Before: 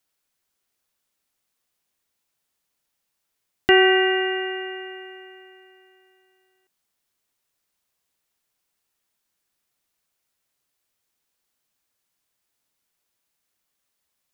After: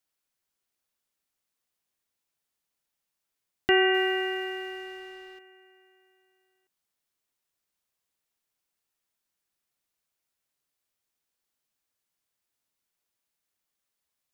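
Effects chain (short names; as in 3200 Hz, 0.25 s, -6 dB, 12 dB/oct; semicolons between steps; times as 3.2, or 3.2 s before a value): 3.94–5.39 G.711 law mismatch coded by mu; gain -6.5 dB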